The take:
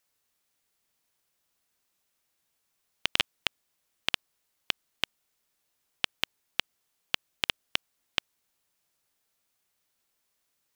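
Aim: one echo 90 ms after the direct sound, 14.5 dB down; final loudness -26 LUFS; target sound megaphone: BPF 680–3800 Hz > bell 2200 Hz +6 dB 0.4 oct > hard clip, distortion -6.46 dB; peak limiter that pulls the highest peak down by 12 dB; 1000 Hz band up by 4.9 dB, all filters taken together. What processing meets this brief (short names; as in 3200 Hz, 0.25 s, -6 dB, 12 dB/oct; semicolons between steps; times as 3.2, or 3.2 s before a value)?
bell 1000 Hz +7 dB; limiter -14 dBFS; BPF 680–3800 Hz; bell 2200 Hz +6 dB 0.4 oct; echo 90 ms -14.5 dB; hard clip -25 dBFS; gain +22.5 dB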